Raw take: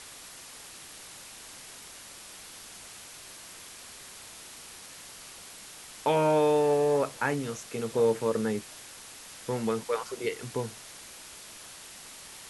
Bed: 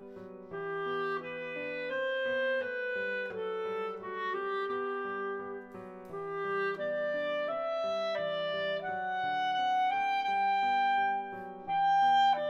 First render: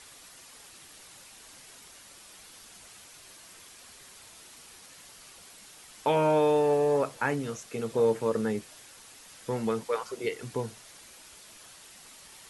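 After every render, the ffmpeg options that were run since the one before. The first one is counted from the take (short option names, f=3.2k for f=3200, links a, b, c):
-af "afftdn=nr=6:nf=-47"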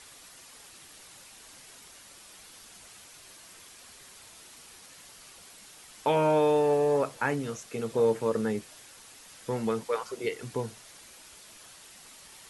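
-af anull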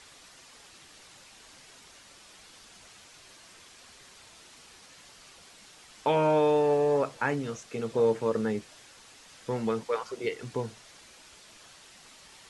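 -af "lowpass=7.1k"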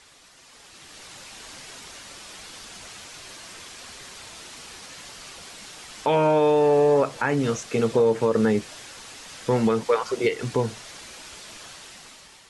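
-af "alimiter=limit=-22dB:level=0:latency=1:release=167,dynaudnorm=f=350:g=5:m=11dB"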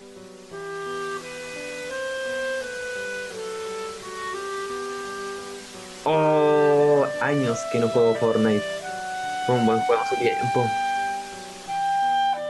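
-filter_complex "[1:a]volume=3.5dB[a];[0:a][a]amix=inputs=2:normalize=0"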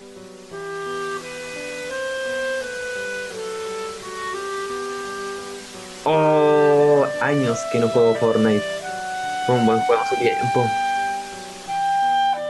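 -af "volume=3dB"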